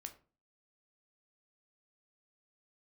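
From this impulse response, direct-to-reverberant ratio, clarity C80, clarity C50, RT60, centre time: 6.0 dB, 19.0 dB, 14.0 dB, 0.35 s, 7 ms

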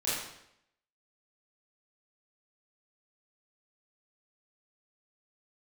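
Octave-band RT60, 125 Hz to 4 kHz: 0.75, 0.75, 0.80, 0.75, 0.75, 0.70 seconds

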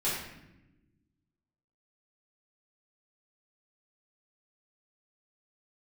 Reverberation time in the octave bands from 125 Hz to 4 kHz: 1.8, 1.8, 1.1, 0.80, 0.90, 0.65 seconds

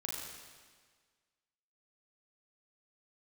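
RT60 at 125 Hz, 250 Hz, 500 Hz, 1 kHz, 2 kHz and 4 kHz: 1.6, 1.6, 1.6, 1.6, 1.6, 1.5 seconds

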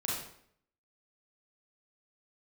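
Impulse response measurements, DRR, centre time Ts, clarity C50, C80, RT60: −5.5 dB, 60 ms, 0.0 dB, 5.0 dB, 0.65 s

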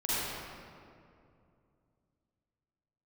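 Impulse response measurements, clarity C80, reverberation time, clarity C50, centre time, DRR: −4.5 dB, 2.5 s, −8.0 dB, 187 ms, −11.0 dB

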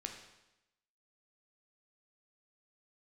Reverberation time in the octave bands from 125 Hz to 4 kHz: 0.95, 0.95, 0.90, 0.95, 0.90, 0.90 seconds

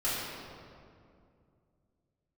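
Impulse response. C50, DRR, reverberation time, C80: −2.0 dB, −11.0 dB, 2.4 s, 0.0 dB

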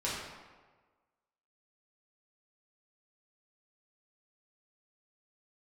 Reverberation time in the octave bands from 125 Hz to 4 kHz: 1.3, 1.3, 1.4, 1.4, 1.1, 0.85 seconds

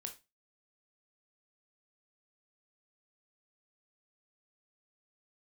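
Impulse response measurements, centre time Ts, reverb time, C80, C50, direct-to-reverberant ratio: 10 ms, 0.25 s, 20.0 dB, 12.5 dB, 4.0 dB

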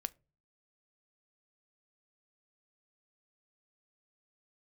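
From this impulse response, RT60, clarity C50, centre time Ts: non-exponential decay, 26.5 dB, 2 ms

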